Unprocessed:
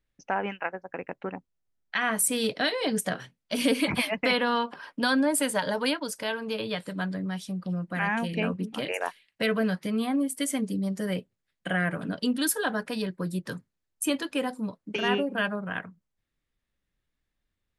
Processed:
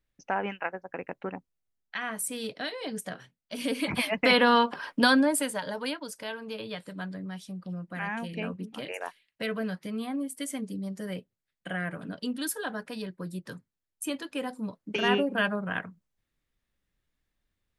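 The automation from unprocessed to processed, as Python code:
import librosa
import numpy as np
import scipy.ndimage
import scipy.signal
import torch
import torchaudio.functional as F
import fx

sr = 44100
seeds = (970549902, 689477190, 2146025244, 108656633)

y = fx.gain(x, sr, db=fx.line((1.36, -1.0), (2.14, -8.0), (3.58, -8.0), (4.43, 5.0), (5.02, 5.0), (5.58, -6.0), (14.24, -6.0), (15.04, 1.0)))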